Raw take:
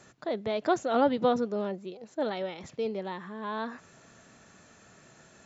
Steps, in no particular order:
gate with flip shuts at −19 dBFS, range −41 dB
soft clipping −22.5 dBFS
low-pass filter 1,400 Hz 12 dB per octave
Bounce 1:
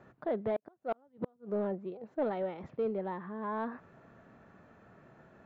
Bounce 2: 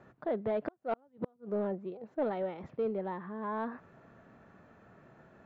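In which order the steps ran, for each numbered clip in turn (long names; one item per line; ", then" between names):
gate with flip, then low-pass filter, then soft clipping
low-pass filter, then gate with flip, then soft clipping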